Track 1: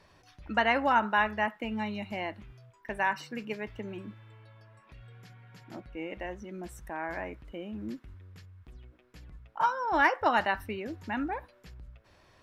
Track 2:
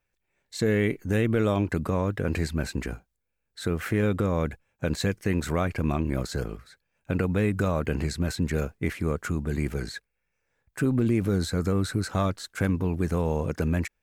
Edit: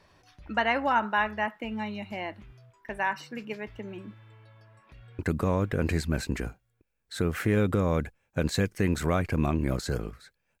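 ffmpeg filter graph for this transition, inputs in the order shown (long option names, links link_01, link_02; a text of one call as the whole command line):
ffmpeg -i cue0.wav -i cue1.wav -filter_complex "[0:a]apad=whole_dur=10.6,atrim=end=10.6,atrim=end=5.192[link_01];[1:a]atrim=start=1.648:end=7.06[link_02];[link_01][link_02]acrossfade=duration=0.004:curve1=hsin:curve2=hsin,asplit=2[link_03][link_04];[link_04]afade=type=in:start_time=4.84:duration=0.01,afade=type=out:start_time=5.19:duration=0.01,aecho=0:1:540|1080|1620|2160:0.841395|0.210349|0.0525872|0.0131468[link_05];[link_03][link_05]amix=inputs=2:normalize=0" out.wav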